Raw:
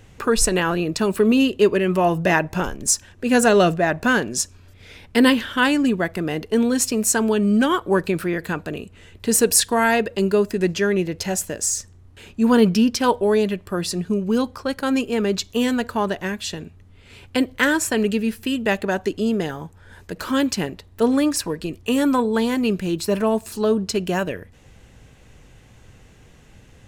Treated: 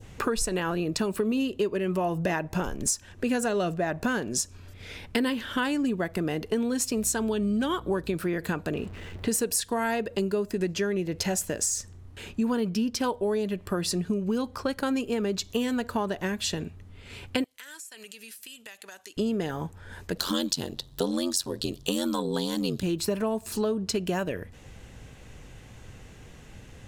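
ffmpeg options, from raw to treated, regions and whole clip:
-filter_complex "[0:a]asettb=1/sr,asplit=3[a][b][c];[a]atrim=end=6.974[d];[b]atrim=start=6.97:end=8.16,asetpts=PTS-STARTPTS,afade=t=in:d=0.004:c=qsin,afade=t=out:st=1.186:d=0.004:c=qsin,equalizer=f=3.6k:t=o:w=0.32:g=7,aeval=exprs='val(0)+0.0126*(sin(2*PI*60*n/s)+sin(2*PI*2*60*n/s)/2+sin(2*PI*3*60*n/s)/3+sin(2*PI*4*60*n/s)/4+sin(2*PI*5*60*n/s)/5)':c=same[e];[c]atrim=start=8.156[f];[d][e]acrossfade=d=0.004:c1=hsin:c2=qsin[g];[g][f]acrossfade=d=0.004:c1=qsin:c2=hsin,asettb=1/sr,asplit=3[h][i][j];[h]atrim=end=8.744[k];[i]atrim=start=8.74:end=9.28,asetpts=PTS-STARTPTS,afade=t=in:d=0.004:c=qsin,afade=t=out:st=0.536:d=0.004:c=qsin,aeval=exprs='val(0)+0.5*0.00944*sgn(val(0))':c=same,lowpass=f=2.2k:p=1[l];[j]atrim=start=9.276[m];[k][l]acrossfade=d=0.004:c1=hsin:c2=qsin[n];[n][m]acrossfade=d=0.004:c1=qsin:c2=hsin,asettb=1/sr,asplit=3[o][p][q];[o]atrim=end=17.444[r];[p]atrim=start=17.44:end=19.17,asetpts=PTS-STARTPTS,afade=t=in:d=0.004:c=qsin,afade=t=out:st=1.726:d=0.004:c=qsin,lowpass=12k,aderivative,acompressor=threshold=-41dB:ratio=12:attack=3.2:release=140:knee=1:detection=peak[s];[q]atrim=start=19.166[t];[r][s]acrossfade=d=0.004:c1=hsin:c2=qsin[u];[u][t]acrossfade=d=0.004:c1=qsin:c2=hsin,asettb=1/sr,asplit=3[v][w][x];[v]atrim=end=20.174[y];[w]atrim=start=20.17:end=22.83,asetpts=PTS-STARTPTS,afade=t=in:d=0.004:c=qsin,afade=t=out:st=2.656:d=0.004:c=qsin,highshelf=f=2.9k:t=q:w=3:g=7,aeval=exprs='val(0)*sin(2*PI*45*n/s)':c=same[z];[x]atrim=start=22.826[aa];[y][z]acrossfade=d=0.004:c1=hsin:c2=qsin[ab];[ab][aa]acrossfade=d=0.004:c1=qsin:c2=hsin,adynamicequalizer=threshold=0.02:dfrequency=2100:dqfactor=0.79:tfrequency=2100:tqfactor=0.79:attack=5:release=100:ratio=0.375:range=2:mode=cutabove:tftype=bell,acompressor=threshold=-26dB:ratio=6,volume=1.5dB"

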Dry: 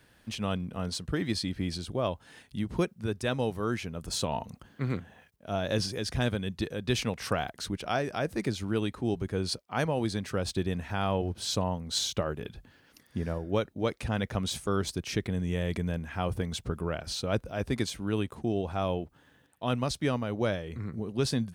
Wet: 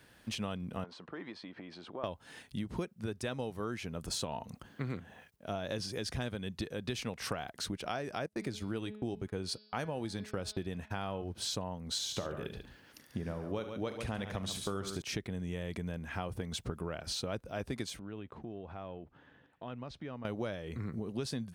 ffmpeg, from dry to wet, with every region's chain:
-filter_complex "[0:a]asettb=1/sr,asplit=3[a][b][c];[a]atrim=end=0.844[d];[b]atrim=start=0.84:end=2.04,asetpts=PTS-STARTPTS,afade=t=in:d=0.004:c=qsin,afade=t=out:st=1.196:d=0.004:c=qsin,acompressor=threshold=-37dB:ratio=8:attack=3.2:release=140:knee=1:detection=peak,highpass=290,lowpass=2.5k,equalizer=f=1k:w=1.9:g=7.5[e];[c]atrim=start=2.036[f];[d][e]acrossfade=d=0.004:c1=hsin:c2=qsin[g];[g][f]acrossfade=d=0.004:c1=qsin:c2=hsin,asettb=1/sr,asplit=3[h][i][j];[h]atrim=end=8.264[k];[i]atrim=start=8.26:end=11.24,asetpts=PTS-STARTPTS,afade=t=in:d=0.004:c=qsin,afade=t=out:st=2.976:d=0.004:c=qsin,agate=range=-32dB:threshold=-41dB:ratio=16:release=100:detection=peak,bandreject=f=212.1:t=h:w=4,bandreject=f=424.2:t=h:w=4,bandreject=f=636.3:t=h:w=4,bandreject=f=848.4:t=h:w=4,bandreject=f=1.0605k:t=h:w=4,bandreject=f=1.2726k:t=h:w=4,bandreject=f=1.4847k:t=h:w=4,bandreject=f=1.6968k:t=h:w=4,bandreject=f=1.9089k:t=h:w=4,bandreject=f=2.121k:t=h:w=4,bandreject=f=2.3331k:t=h:w=4,bandreject=f=2.5452k:t=h:w=4,bandreject=f=2.7573k:t=h:w=4,bandreject=f=2.9694k:t=h:w=4,bandreject=f=3.1815k:t=h:w=4,bandreject=f=3.3936k:t=h:w=4,bandreject=f=3.6057k:t=h:w=4,bandreject=f=3.8178k:t=h:w=4,bandreject=f=4.0299k:t=h:w=4,bandreject=f=4.242k:t=h:w=4,bandreject=f=4.4541k:t=h:w=4,bandreject=f=4.6662k:t=h:w=4,bandreject=f=4.8783k:t=h:w=4,bandreject=f=5.0904k:t=h:w=4,bandreject=f=5.3025k:t=h:w=4[l];[j]atrim=start=11.236[m];[k][l]acrossfade=d=0.004:c1=hsin:c2=qsin[n];[n][m]acrossfade=d=0.004:c1=qsin:c2=hsin,asettb=1/sr,asplit=3[o][p][q];[o]atrim=end=11.954[r];[p]atrim=start=11.95:end=15.02,asetpts=PTS-STARTPTS,afade=t=in:d=0.004:c=qsin,afade=t=out:st=3.066:d=0.004:c=qsin,asplit=2[s][t];[t]adelay=41,volume=-14dB[u];[s][u]amix=inputs=2:normalize=0,atrim=end_sample=135387,aecho=1:1:73|140:0.237|0.282,atrim=end_sample=135387[v];[q]atrim=start=15.016[w];[r][v]acrossfade=d=0.004:c1=hsin:c2=qsin[x];[x][w]acrossfade=d=0.004:c1=qsin:c2=hsin,asettb=1/sr,asplit=3[y][z][aa];[y]atrim=end=17.994[ab];[z]atrim=start=17.99:end=20.25,asetpts=PTS-STARTPTS,afade=t=in:d=0.004:c=qsin,afade=t=out:st=2.256:d=0.004:c=qsin,lowpass=2.8k,acompressor=threshold=-45dB:ratio=3:attack=3.2:release=140:knee=1:detection=peak[ac];[aa]atrim=start=20.246[ad];[ab][ac]acrossfade=d=0.004:c1=hsin:c2=qsin[ae];[ae][ad]acrossfade=d=0.004:c1=qsin:c2=hsin,lowshelf=f=79:g=-6,acompressor=threshold=-35dB:ratio=6,volume=1dB"

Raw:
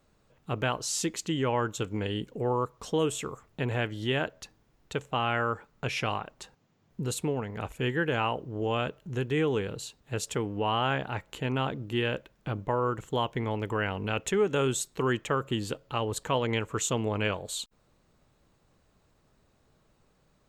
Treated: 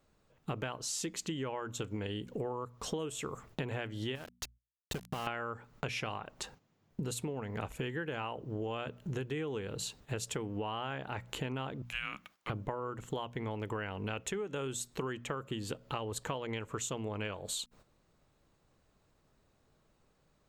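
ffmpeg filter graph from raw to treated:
-filter_complex "[0:a]asettb=1/sr,asplit=3[a][b][c];[a]atrim=end=4.154[d];[b]atrim=start=4.15:end=5.27,asetpts=PTS-STARTPTS,afade=t=in:d=0.004:c=qsin,afade=t=out:st=1.116:d=0.004:c=qsin,lowshelf=f=150:g=8,acompressor=threshold=-34dB:ratio=12:attack=3.2:release=140:knee=1:detection=peak,aeval=exprs='val(0)*gte(abs(val(0)),0.00841)':c=same[e];[c]atrim=start=5.266[f];[d][e]acrossfade=d=0.004:c1=hsin:c2=qsin[g];[g][f]acrossfade=d=0.004:c1=qsin:c2=hsin,asettb=1/sr,asplit=3[h][i][j];[h]atrim=end=11.824[k];[i]atrim=start=11.82:end=12.5,asetpts=PTS-STARTPTS,afade=t=in:d=0.004:c=qsin,afade=t=out:st=0.676:d=0.004:c=qsin,highpass=1.1k,afreqshift=-320[l];[j]atrim=start=12.496[m];[k][l]acrossfade=d=0.004:c1=hsin:c2=qsin[n];[n][m]acrossfade=d=0.004:c1=qsin:c2=hsin,bandreject=f=60:t=h:w=6,bandreject=f=120:t=h:w=6,bandreject=f=180:t=h:w=6,bandreject=f=240:t=h:w=6,agate=range=-10dB:threshold=-59dB:ratio=16:detection=peak,acompressor=threshold=-40dB:ratio=16,volume=6dB"

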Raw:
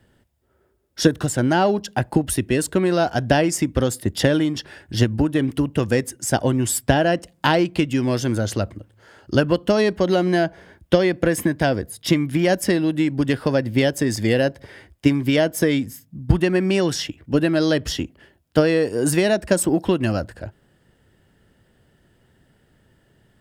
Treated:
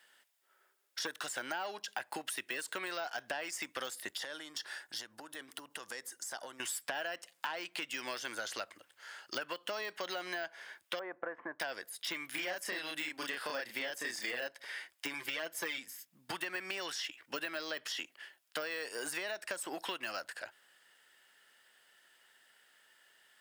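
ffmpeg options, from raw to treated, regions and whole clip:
-filter_complex "[0:a]asettb=1/sr,asplit=3[a][b][c];[a]atrim=end=4.174[d];[b]atrim=start=4.17:end=6.6,asetpts=PTS-STARTPTS,afade=t=in:d=0.004:c=qsin,afade=t=out:st=2.426:d=0.004:c=qsin,equalizer=f=2.5k:t=o:w=0.73:g=-9,acompressor=threshold=-28dB:ratio=6:attack=3.2:release=140:knee=1:detection=peak[e];[c]atrim=start=6.596[f];[d][e]acrossfade=d=0.004:c1=hsin:c2=qsin[g];[g][f]acrossfade=d=0.004:c1=qsin:c2=hsin,asettb=1/sr,asplit=3[h][i][j];[h]atrim=end=10.994[k];[i]atrim=start=10.99:end=11.6,asetpts=PTS-STARTPTS,afade=t=in:d=0.004:c=qsin,afade=t=out:st=0.606:d=0.004:c=qsin,lowpass=f=1.2k:w=0.5412,lowpass=f=1.2k:w=1.3066,equalizer=f=180:t=o:w=1.8:g=-6[l];[j]atrim=start=11.596[m];[k][l]acrossfade=d=0.004:c1=hsin:c2=qsin[n];[n][m]acrossfade=d=0.004:c1=qsin:c2=hsin,asettb=1/sr,asplit=3[o][p][q];[o]atrim=end=12.314[r];[p]atrim=start=12.31:end=14.47,asetpts=PTS-STARTPTS,afade=t=in:d=0.004:c=qsin,afade=t=out:st=2.156:d=0.004:c=qsin,highpass=54,asplit=2[s][t];[t]adelay=33,volume=-2dB[u];[s][u]amix=inputs=2:normalize=0,atrim=end_sample=95256[v];[q]atrim=start=14.466[w];[r][v]acrossfade=d=0.004:c1=hsin:c2=qsin[x];[x][w]acrossfade=d=0.004:c1=qsin:c2=hsin,asettb=1/sr,asplit=3[y][z][aa];[y]atrim=end=15.134[ab];[z]atrim=start=15.13:end=15.78,asetpts=PTS-STARTPTS,afade=t=in:d=0.004:c=qsin,afade=t=out:st=0.646:d=0.004:c=qsin,asoftclip=type=hard:threshold=-11.5dB,bandreject=f=50:t=h:w=6,bandreject=f=100:t=h:w=6,bandreject=f=150:t=h:w=6,bandreject=f=200:t=h:w=6,bandreject=f=250:t=h:w=6,aecho=1:1:5.8:0.78,atrim=end_sample=28665[ac];[aa]atrim=start=15.776[ad];[ab][ac]acrossfade=d=0.004:c1=hsin:c2=qsin[ae];[ae][ad]acrossfade=d=0.004:c1=qsin:c2=hsin,deesser=0.9,highpass=1.4k,acompressor=threshold=-39dB:ratio=5,volume=3dB"

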